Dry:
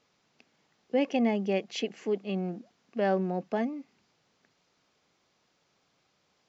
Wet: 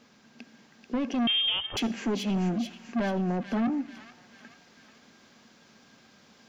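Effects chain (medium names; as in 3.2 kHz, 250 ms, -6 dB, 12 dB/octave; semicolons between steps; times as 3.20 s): in parallel at +1.5 dB: compression, threshold -44 dBFS, peak gain reduction 20.5 dB; on the sum: peak limiter -22.5 dBFS, peak gain reduction 8.5 dB; gain riding within 4 dB 0.5 s; small resonant body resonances 230/1600 Hz, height 15 dB, ringing for 85 ms; saturation -28.5 dBFS, distortion -5 dB; feedback echo behind a high-pass 437 ms, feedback 50%, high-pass 2 kHz, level -5.5 dB; on a send at -20 dB: reverberation RT60 1.0 s, pre-delay 60 ms; 1.27–1.77 s: on the sum: frequency inversion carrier 3.4 kHz; trim +4.5 dB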